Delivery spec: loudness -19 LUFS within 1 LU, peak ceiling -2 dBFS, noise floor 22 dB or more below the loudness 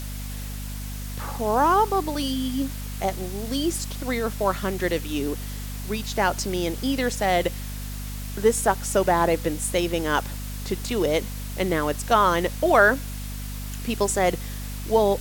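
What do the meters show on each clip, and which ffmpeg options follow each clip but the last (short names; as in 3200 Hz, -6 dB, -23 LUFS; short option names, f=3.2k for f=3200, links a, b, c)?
hum 50 Hz; harmonics up to 250 Hz; hum level -30 dBFS; noise floor -33 dBFS; noise floor target -47 dBFS; loudness -24.5 LUFS; peak -4.5 dBFS; loudness target -19.0 LUFS
-> -af "bandreject=f=50:t=h:w=6,bandreject=f=100:t=h:w=6,bandreject=f=150:t=h:w=6,bandreject=f=200:t=h:w=6,bandreject=f=250:t=h:w=6"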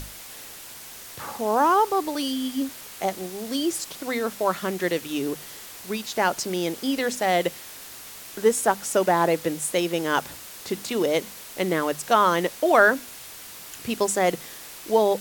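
hum none; noise floor -42 dBFS; noise floor target -46 dBFS
-> -af "afftdn=nr=6:nf=-42"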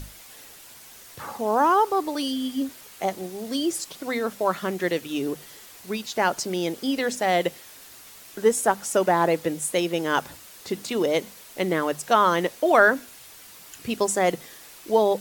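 noise floor -47 dBFS; loudness -24.0 LUFS; peak -4.5 dBFS; loudness target -19.0 LUFS
-> -af "volume=5dB,alimiter=limit=-2dB:level=0:latency=1"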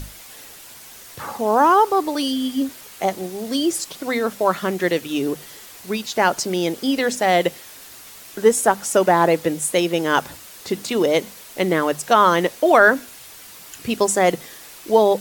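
loudness -19.5 LUFS; peak -2.0 dBFS; noise floor -42 dBFS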